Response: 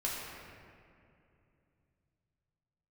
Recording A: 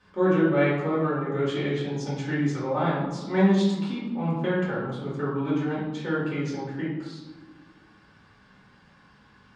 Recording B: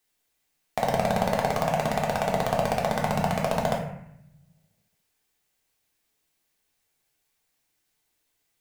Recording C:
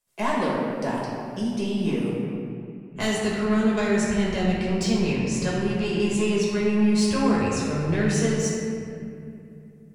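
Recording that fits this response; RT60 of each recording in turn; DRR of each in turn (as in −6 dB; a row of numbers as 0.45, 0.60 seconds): C; 1.3, 0.70, 2.6 seconds; −8.5, −2.0, −5.5 decibels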